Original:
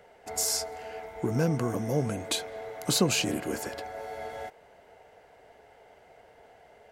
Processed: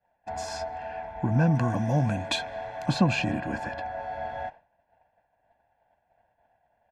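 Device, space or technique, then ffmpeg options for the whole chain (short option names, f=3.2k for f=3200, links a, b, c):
hearing-loss simulation: -filter_complex "[0:a]lowpass=2.4k,agate=range=-33dB:threshold=-43dB:ratio=3:detection=peak,aecho=1:1:1.2:0.87,asettb=1/sr,asplit=3[a][b][c];[a]atrim=end=1.554[d];[b]atrim=start=1.55:end=2.86,asetpts=PTS-STARTPTS,afade=t=in:d=0.004:c=qsin,afade=t=out:st=1.306:d=0.004:c=qsin,highshelf=f=3.5k:g=12[e];[c]atrim=start=2.856[f];[d][e]acrossfade=d=0.004:c1=hsin:c2=qsin[g];[g][f]acrossfade=d=0.004:c1=qsin:c2=hsin,volume=2dB"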